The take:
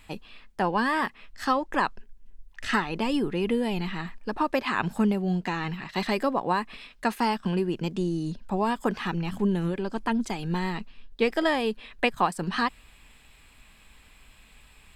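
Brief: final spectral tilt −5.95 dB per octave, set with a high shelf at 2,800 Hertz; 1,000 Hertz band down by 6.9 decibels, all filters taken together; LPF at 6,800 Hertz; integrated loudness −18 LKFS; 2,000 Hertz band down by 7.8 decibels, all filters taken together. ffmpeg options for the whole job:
ffmpeg -i in.wav -af "lowpass=6800,equalizer=frequency=1000:width_type=o:gain=-6.5,equalizer=frequency=2000:width_type=o:gain=-5.5,highshelf=frequency=2800:gain=-5.5,volume=12dB" out.wav

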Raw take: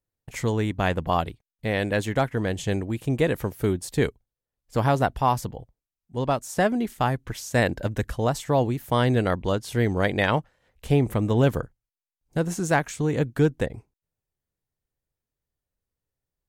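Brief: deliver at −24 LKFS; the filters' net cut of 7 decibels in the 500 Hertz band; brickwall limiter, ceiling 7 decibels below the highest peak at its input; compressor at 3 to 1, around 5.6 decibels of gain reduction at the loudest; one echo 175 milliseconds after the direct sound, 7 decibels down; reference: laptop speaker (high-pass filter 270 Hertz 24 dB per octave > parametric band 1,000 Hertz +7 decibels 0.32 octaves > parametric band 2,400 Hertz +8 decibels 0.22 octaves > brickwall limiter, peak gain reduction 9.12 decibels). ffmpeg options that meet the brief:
ffmpeg -i in.wav -af "equalizer=frequency=500:width_type=o:gain=-9,acompressor=threshold=-25dB:ratio=3,alimiter=limit=-20.5dB:level=0:latency=1,highpass=frequency=270:width=0.5412,highpass=frequency=270:width=1.3066,equalizer=frequency=1000:width_type=o:width=0.32:gain=7,equalizer=frequency=2400:width_type=o:width=0.22:gain=8,aecho=1:1:175:0.447,volume=13dB,alimiter=limit=-11.5dB:level=0:latency=1" out.wav

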